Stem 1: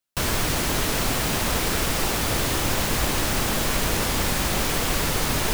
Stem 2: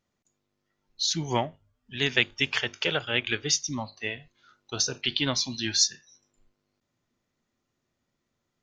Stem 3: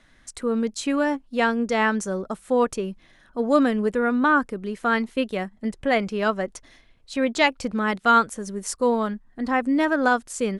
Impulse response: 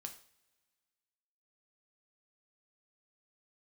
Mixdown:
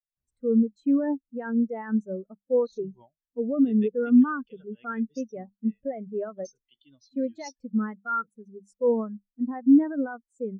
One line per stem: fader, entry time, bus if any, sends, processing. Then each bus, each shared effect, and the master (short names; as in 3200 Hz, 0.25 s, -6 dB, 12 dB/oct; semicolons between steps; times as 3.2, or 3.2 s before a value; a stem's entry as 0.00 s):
-19.0 dB, 0.00 s, no send, auto duck -11 dB, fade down 1.75 s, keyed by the third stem
-7.0 dB, 1.65 s, no send, high shelf 6700 Hz +9 dB
+1.5 dB, 0.00 s, no send, notches 50/100/150/200 Hz; limiter -17.5 dBFS, peak gain reduction 11.5 dB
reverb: off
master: spectral expander 2.5:1